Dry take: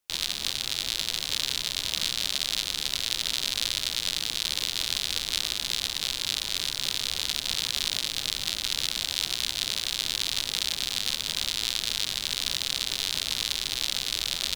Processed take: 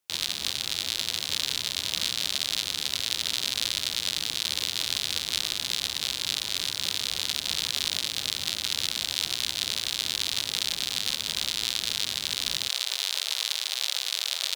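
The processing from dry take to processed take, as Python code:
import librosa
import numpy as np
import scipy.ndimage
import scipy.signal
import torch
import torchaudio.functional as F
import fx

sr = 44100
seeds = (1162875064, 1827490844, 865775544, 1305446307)

y = fx.highpass(x, sr, hz=fx.steps((0.0, 59.0), (12.69, 500.0)), slope=24)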